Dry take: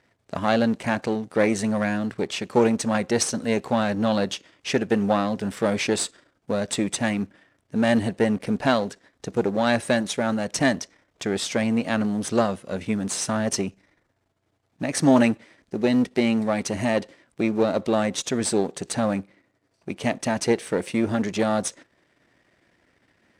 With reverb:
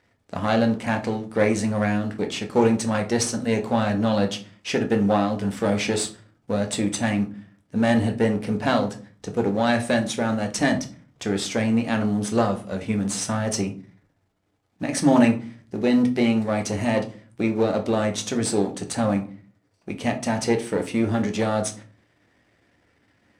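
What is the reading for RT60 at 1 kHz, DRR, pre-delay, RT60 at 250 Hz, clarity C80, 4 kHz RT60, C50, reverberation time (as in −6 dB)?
0.40 s, 4.0 dB, 4 ms, 0.55 s, 18.5 dB, 0.25 s, 13.0 dB, 0.40 s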